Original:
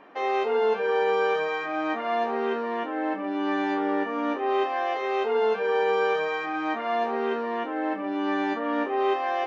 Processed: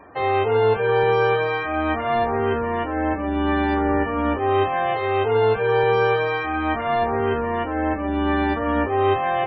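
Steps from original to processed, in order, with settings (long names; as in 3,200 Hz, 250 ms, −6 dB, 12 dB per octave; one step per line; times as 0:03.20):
sub-octave generator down 2 octaves, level −3 dB
spectral peaks only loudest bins 64
level +5 dB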